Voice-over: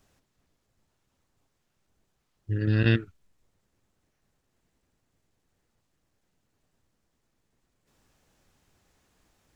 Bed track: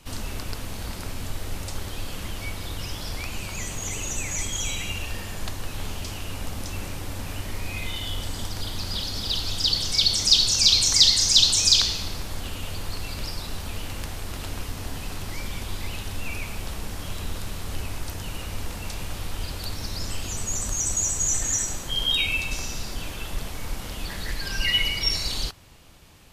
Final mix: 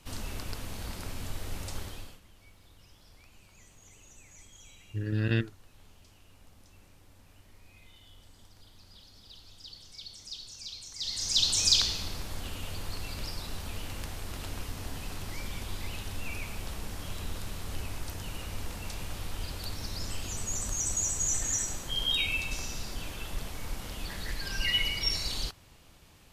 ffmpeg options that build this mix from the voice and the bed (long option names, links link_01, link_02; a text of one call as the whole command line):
ffmpeg -i stem1.wav -i stem2.wav -filter_complex "[0:a]adelay=2450,volume=-5.5dB[link_01];[1:a]volume=14dB,afade=type=out:start_time=1.78:duration=0.42:silence=0.105925,afade=type=in:start_time=10.97:duration=0.66:silence=0.105925[link_02];[link_01][link_02]amix=inputs=2:normalize=0" out.wav